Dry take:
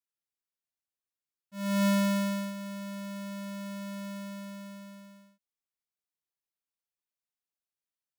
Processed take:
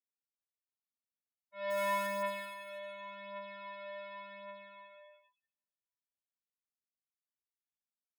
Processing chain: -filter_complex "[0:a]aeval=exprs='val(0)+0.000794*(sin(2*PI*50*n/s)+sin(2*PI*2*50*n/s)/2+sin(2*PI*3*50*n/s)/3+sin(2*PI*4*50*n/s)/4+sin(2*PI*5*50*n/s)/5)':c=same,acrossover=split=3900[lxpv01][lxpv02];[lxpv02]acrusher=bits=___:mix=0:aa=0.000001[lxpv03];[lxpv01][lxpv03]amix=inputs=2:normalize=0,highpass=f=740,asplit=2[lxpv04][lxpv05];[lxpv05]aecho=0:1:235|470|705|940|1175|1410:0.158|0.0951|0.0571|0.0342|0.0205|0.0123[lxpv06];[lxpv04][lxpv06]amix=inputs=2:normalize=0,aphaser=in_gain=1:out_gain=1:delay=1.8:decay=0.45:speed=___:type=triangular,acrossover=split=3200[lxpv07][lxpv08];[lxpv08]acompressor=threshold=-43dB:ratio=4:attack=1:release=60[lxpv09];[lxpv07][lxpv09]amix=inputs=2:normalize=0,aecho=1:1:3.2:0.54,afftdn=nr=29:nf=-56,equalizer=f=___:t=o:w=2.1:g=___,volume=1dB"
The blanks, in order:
4, 0.89, 4400, -3.5